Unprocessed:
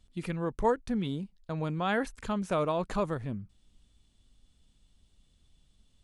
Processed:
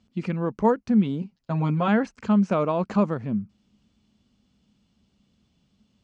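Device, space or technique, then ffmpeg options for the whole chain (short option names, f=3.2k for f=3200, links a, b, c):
car door speaker: -filter_complex "[0:a]asettb=1/sr,asplit=3[a][b][c];[a]atrim=end=1.214[d];[b]atrim=start=1.21:end=1.88,asetpts=PTS-STARTPTS,afade=t=in:d=0.004:c=qsin,afade=t=out:st=0.666:d=0.004:c=qsin,aecho=1:1:7.4:0.9,atrim=end_sample=29547[e];[c]atrim=start=1.876[f];[d][e]acrossfade=d=0.004:c1=hsin:c2=qsin[g];[g][f]acrossfade=d=0.004:c1=qsin:c2=hsin,lowpass=5.6k,highpass=110,equalizer=f=210:t=q:w=4:g=10,equalizer=f=1.8k:t=q:w=4:g=-4,equalizer=f=3.6k:t=q:w=4:g=-9,lowpass=f=7.3k:w=0.5412,lowpass=f=7.3k:w=1.3066,volume=5dB"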